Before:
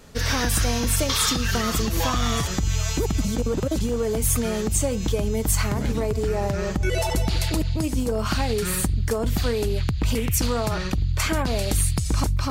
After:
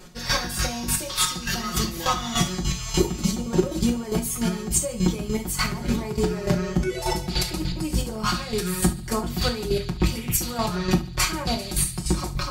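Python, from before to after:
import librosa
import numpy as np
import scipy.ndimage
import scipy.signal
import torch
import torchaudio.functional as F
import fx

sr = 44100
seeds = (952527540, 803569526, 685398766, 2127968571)

y = fx.peak_eq(x, sr, hz=4700.0, db=4.5, octaves=0.22)
y = y + 0.84 * np.pad(y, (int(5.5 * sr / 1000.0), 0))[:len(y)]
y = fx.rider(y, sr, range_db=10, speed_s=0.5)
y = fx.chopper(y, sr, hz=3.4, depth_pct=65, duty_pct=25)
y = fx.echo_feedback(y, sr, ms=72, feedback_pct=44, wet_db=-17.0)
y = fx.rev_gated(y, sr, seeds[0], gate_ms=90, shape='falling', drr_db=3.5)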